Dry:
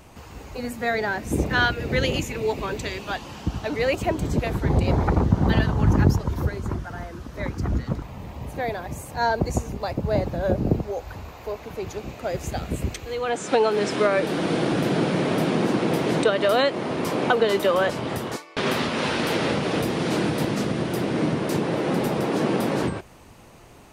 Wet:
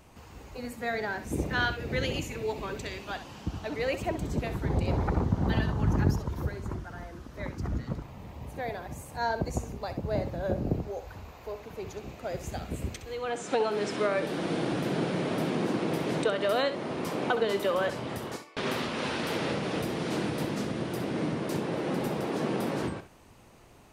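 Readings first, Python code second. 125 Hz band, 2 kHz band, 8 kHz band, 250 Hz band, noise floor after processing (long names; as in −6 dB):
−7.0 dB, −7.0 dB, −7.0 dB, −7.0 dB, −50 dBFS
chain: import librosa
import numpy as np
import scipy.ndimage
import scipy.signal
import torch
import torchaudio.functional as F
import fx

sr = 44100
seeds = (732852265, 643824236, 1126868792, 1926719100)

y = fx.echo_feedback(x, sr, ms=65, feedback_pct=16, wet_db=-11.5)
y = y * 10.0 ** (-7.5 / 20.0)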